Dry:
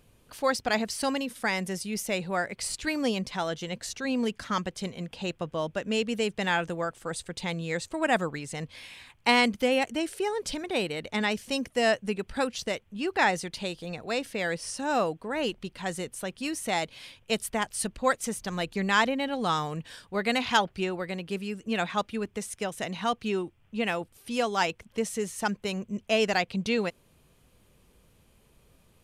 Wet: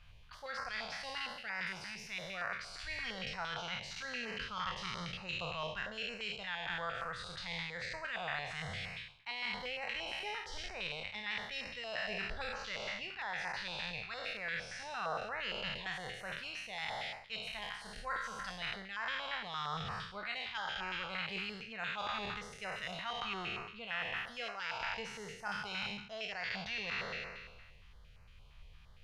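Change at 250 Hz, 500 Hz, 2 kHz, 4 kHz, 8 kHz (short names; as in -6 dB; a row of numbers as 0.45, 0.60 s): -21.0, -17.0, -7.0, -6.5, -18.0 dB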